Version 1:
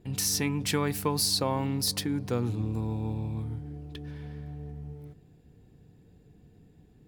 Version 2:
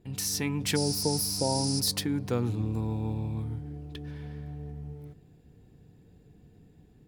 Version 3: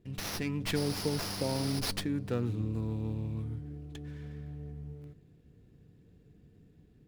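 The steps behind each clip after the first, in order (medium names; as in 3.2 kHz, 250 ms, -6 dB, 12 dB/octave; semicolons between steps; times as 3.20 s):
spectral replace 0.78–1.77 s, 950–10000 Hz after; level rider gain up to 4 dB; trim -3.5 dB
peaking EQ 820 Hz -9.5 dB 0.44 oct; sliding maximum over 5 samples; trim -3 dB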